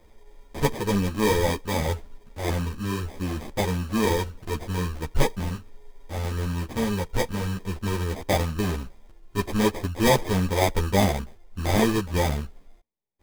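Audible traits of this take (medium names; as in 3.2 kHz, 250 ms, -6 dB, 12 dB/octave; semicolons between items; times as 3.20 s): aliases and images of a low sample rate 1.4 kHz, jitter 0%; a shimmering, thickened sound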